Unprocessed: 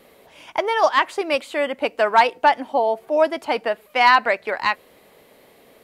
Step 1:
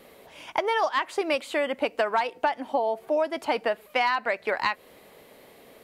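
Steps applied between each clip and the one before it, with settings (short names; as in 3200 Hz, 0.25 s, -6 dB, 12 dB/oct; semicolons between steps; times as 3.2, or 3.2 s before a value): compressor 10:1, threshold -21 dBFS, peak gain reduction 12.5 dB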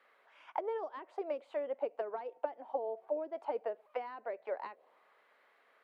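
low shelf 170 Hz -11 dB; auto-wah 370–1500 Hz, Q 2.5, down, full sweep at -21 dBFS; gain -5 dB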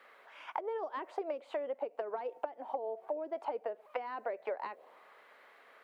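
compressor 10:1, threshold -42 dBFS, peak gain reduction 14 dB; gain +8.5 dB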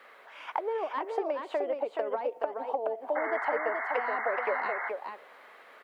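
echo 0.425 s -5 dB; painted sound noise, 3.15–4.9, 660–2200 Hz -40 dBFS; gain +5.5 dB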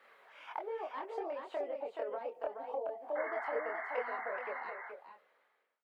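ending faded out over 1.75 s; chorus voices 6, 0.65 Hz, delay 25 ms, depth 1.3 ms; gain -5 dB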